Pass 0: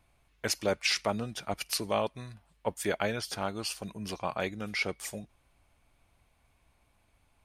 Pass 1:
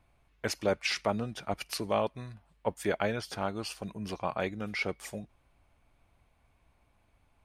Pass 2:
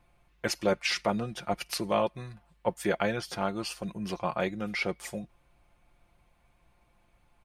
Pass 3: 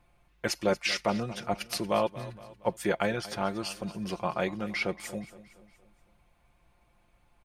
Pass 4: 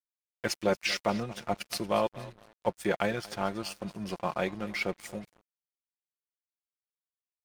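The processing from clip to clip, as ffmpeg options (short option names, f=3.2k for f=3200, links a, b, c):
-af "highshelf=f=3.3k:g=-8.5,volume=1dB"
-af "aecho=1:1:5.7:0.5,volume=1.5dB"
-af "aecho=1:1:233|466|699|932:0.141|0.0706|0.0353|0.0177"
-af "aeval=exprs='sgn(val(0))*max(abs(val(0))-0.00531,0)':c=same"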